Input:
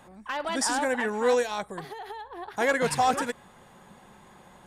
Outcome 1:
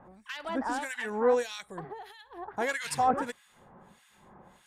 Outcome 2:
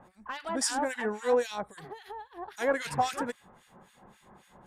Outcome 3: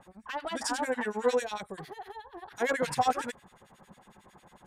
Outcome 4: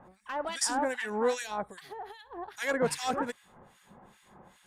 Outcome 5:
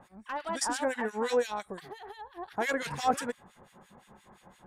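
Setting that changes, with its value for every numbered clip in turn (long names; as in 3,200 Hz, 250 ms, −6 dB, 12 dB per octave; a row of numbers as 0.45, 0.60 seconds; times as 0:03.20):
two-band tremolo in antiphase, speed: 1.6, 3.7, 11, 2.5, 5.8 Hertz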